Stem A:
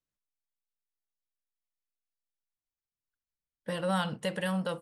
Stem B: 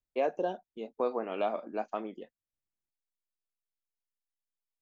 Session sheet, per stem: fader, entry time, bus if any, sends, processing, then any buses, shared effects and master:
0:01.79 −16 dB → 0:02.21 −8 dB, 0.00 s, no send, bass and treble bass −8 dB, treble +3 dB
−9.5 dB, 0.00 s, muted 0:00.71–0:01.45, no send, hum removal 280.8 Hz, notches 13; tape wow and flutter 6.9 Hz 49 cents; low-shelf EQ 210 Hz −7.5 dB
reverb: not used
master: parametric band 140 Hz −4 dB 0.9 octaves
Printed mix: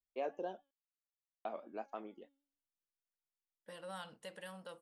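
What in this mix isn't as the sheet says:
stem A −16.0 dB → −23.5 dB
stem B: missing low-shelf EQ 210 Hz −7.5 dB

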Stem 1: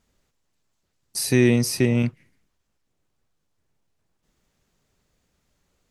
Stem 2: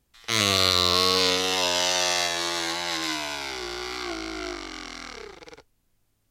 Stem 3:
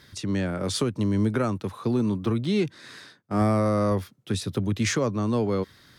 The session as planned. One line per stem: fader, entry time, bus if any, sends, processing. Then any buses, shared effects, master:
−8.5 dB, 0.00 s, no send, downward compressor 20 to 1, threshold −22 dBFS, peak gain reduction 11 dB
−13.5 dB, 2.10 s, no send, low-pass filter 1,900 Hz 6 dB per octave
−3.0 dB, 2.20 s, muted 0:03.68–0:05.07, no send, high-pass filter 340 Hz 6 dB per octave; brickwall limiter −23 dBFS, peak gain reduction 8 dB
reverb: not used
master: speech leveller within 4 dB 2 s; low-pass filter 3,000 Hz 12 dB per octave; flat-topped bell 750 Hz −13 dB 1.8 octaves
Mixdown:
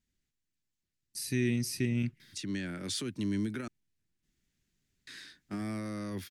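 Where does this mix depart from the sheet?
stem 1: missing downward compressor 20 to 1, threshold −22 dBFS, peak gain reduction 11 dB
stem 2: muted
master: missing low-pass filter 3,000 Hz 12 dB per octave

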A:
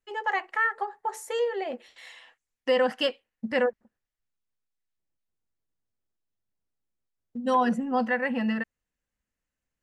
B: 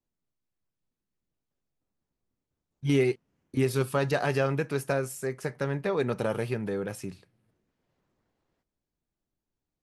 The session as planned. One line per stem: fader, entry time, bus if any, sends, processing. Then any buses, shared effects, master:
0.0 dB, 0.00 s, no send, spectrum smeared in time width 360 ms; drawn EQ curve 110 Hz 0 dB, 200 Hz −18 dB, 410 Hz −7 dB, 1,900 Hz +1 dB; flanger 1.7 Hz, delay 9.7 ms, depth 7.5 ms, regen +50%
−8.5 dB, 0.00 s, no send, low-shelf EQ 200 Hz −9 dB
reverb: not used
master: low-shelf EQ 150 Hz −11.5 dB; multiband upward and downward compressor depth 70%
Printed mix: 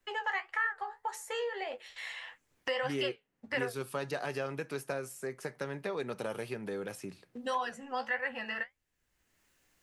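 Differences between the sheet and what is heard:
stem A: missing spectrum smeared in time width 360 ms
stem B: missing low-shelf EQ 200 Hz −9 dB

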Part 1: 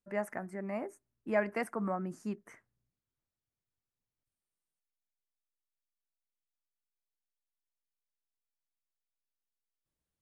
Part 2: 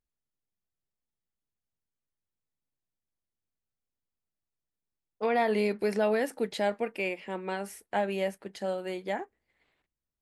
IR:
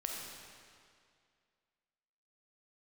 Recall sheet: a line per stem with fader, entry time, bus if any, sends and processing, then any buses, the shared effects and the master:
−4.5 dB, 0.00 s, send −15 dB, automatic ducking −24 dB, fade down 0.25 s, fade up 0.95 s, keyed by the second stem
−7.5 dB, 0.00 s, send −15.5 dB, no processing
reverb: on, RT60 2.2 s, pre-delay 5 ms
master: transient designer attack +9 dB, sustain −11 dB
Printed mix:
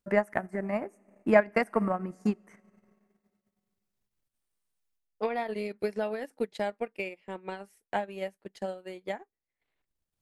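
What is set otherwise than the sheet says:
stem 1 −4.5 dB → +3.0 dB
stem 2: send off

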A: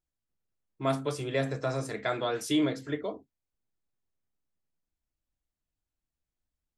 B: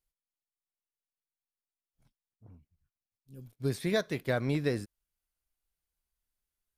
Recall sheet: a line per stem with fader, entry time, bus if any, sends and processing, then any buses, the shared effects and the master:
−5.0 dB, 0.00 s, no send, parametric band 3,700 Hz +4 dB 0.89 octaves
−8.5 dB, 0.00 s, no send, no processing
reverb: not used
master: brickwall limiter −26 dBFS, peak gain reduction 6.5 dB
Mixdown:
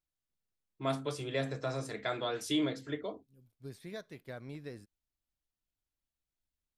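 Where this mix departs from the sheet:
stem B −8.5 dB → −15.0 dB
master: missing brickwall limiter −26 dBFS, peak gain reduction 6.5 dB

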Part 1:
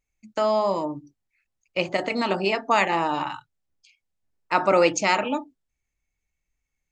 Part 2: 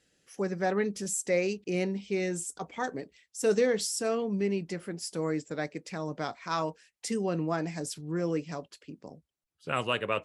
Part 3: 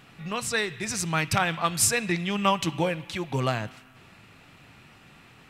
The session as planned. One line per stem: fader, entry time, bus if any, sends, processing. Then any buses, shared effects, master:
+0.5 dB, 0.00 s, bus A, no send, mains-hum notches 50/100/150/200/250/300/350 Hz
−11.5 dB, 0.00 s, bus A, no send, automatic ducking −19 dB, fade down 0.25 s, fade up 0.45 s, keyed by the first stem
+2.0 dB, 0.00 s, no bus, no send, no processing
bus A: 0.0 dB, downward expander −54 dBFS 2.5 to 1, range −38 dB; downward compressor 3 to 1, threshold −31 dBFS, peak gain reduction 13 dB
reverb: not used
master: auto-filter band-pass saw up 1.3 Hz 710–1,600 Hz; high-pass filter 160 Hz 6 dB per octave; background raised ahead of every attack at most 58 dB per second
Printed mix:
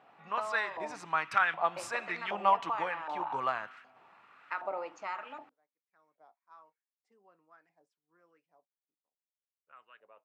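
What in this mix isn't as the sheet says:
stem 1: missing mains-hum notches 50/100/150/200/250/300/350 Hz
stem 2 −11.5 dB → −22.0 dB
master: missing background raised ahead of every attack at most 58 dB per second

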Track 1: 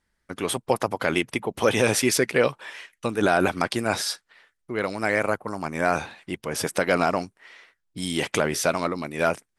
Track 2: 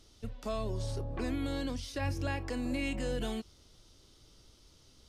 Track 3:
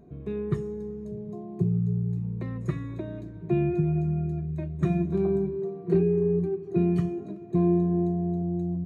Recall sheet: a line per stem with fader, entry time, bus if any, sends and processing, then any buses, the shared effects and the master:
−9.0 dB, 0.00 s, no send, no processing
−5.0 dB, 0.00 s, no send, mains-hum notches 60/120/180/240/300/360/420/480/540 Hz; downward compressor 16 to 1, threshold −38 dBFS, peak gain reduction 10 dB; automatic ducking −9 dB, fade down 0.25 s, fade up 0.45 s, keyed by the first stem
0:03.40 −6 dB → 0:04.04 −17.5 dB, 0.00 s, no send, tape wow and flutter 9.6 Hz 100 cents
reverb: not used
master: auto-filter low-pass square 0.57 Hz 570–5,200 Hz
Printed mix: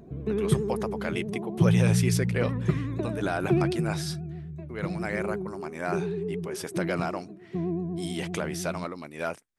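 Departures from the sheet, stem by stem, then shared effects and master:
stem 2: muted
stem 3 −6.0 dB → +4.0 dB
master: missing auto-filter low-pass square 0.57 Hz 570–5,200 Hz

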